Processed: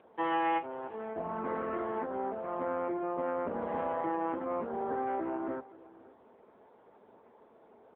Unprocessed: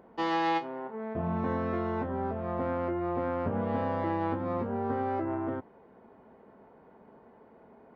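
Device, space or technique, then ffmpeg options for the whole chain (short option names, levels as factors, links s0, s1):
satellite phone: -af "highpass=310,lowpass=3100,aecho=1:1:520:0.1" -ar 8000 -c:a libopencore_amrnb -b:a 6700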